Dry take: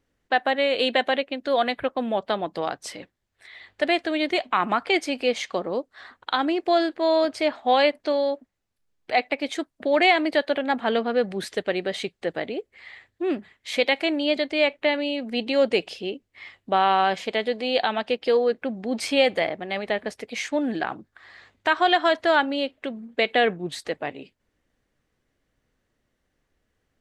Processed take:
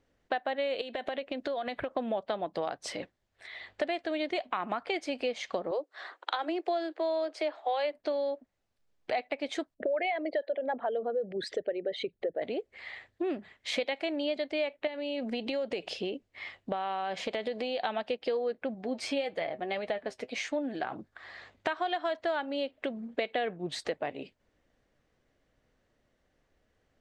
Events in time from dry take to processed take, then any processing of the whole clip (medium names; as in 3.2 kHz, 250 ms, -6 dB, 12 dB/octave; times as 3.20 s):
0.81–1.91 s: compression 12:1, threshold -30 dBFS
5.71–7.93 s: steep high-pass 300 Hz 96 dB/octave
9.74–12.42 s: resonances exaggerated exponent 2
14.87–17.85 s: compression 3:1, threshold -28 dBFS
18.74–20.93 s: flange 1.7 Hz, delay 6 ms, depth 2.4 ms, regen +54%
whole clip: peaking EQ 620 Hz +5 dB 0.82 oct; compression 5:1, threshold -30 dBFS; low-pass 7.3 kHz 12 dB/octave